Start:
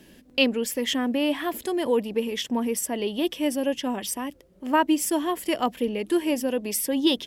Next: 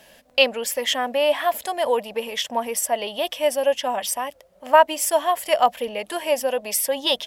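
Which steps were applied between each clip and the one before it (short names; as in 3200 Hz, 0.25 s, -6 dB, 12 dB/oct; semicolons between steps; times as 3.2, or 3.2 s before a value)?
resonant low shelf 460 Hz -10.5 dB, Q 3; gain +4.5 dB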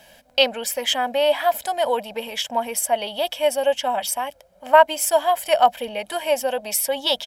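comb 1.3 ms, depth 43%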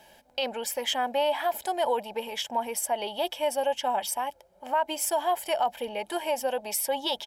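small resonant body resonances 370/860 Hz, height 12 dB, ringing for 45 ms; limiter -10.5 dBFS, peak gain reduction 11.5 dB; gain -6.5 dB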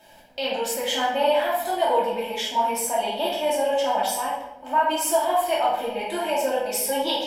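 shoebox room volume 260 m³, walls mixed, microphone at 2.7 m; gain -3 dB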